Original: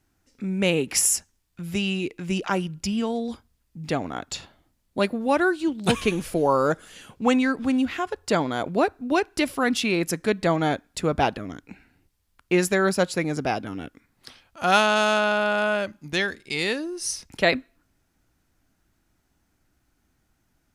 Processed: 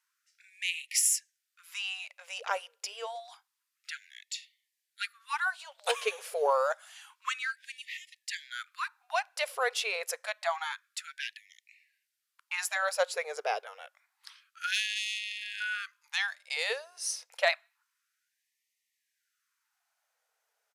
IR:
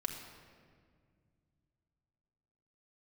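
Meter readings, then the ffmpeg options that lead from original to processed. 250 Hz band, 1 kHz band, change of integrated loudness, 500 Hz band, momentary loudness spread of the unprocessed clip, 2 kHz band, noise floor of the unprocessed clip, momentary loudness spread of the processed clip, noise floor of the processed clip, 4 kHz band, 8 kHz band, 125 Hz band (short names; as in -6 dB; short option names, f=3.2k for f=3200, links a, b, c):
under -40 dB, -9.5 dB, -9.0 dB, -11.5 dB, 12 LU, -6.5 dB, -71 dBFS, 13 LU, -84 dBFS, -5.0 dB, -5.0 dB, under -40 dB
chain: -af "aresample=32000,aresample=44100,aeval=exprs='0.501*(cos(1*acos(clip(val(0)/0.501,-1,1)))-cos(1*PI/2))+0.112*(cos(2*acos(clip(val(0)/0.501,-1,1)))-cos(2*PI/2))+0.0562*(cos(4*acos(clip(val(0)/0.501,-1,1)))-cos(4*PI/2))+0.0112*(cos(6*acos(clip(val(0)/0.501,-1,1)))-cos(6*PI/2))+0.00398*(cos(8*acos(clip(val(0)/0.501,-1,1)))-cos(8*PI/2))':c=same,afftfilt=real='re*gte(b*sr/1024,400*pow(1800/400,0.5+0.5*sin(2*PI*0.28*pts/sr)))':imag='im*gte(b*sr/1024,400*pow(1800/400,0.5+0.5*sin(2*PI*0.28*pts/sr)))':win_size=1024:overlap=0.75,volume=-5dB"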